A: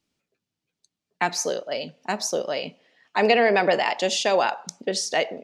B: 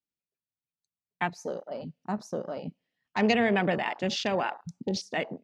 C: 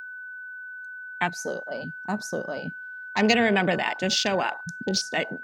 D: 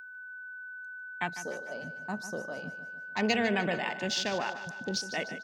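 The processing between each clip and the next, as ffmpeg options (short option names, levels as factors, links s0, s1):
-af "afwtdn=0.0316,asubboost=boost=8:cutoff=190,volume=0.562"
-af "aeval=exprs='val(0)+0.01*sin(2*PI*1500*n/s)':c=same,crystalizer=i=2.5:c=0,volume=1.33"
-af "aecho=1:1:150|300|450|600|750:0.237|0.121|0.0617|0.0315|0.016,volume=0.422"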